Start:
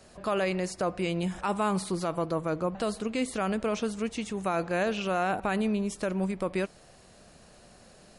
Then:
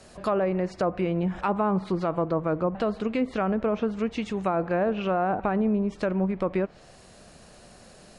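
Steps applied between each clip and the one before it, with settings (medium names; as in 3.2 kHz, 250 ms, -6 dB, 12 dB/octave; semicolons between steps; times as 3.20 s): low-pass that closes with the level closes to 1.1 kHz, closed at -24 dBFS; trim +4 dB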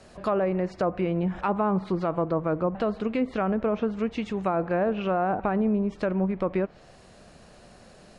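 treble shelf 6 kHz -9 dB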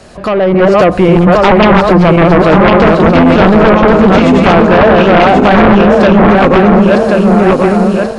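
backward echo that repeats 541 ms, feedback 73%, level -2 dB; sine folder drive 11 dB, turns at -8.5 dBFS; level rider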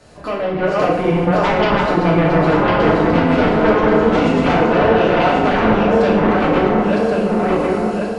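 FDN reverb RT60 1 s, low-frequency decay 1×, high-frequency decay 0.85×, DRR -4 dB; trim -13.5 dB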